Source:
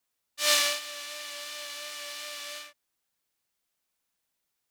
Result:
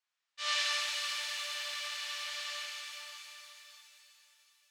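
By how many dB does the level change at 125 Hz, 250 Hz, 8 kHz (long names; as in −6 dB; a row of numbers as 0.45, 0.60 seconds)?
can't be measured, below −20 dB, −8.5 dB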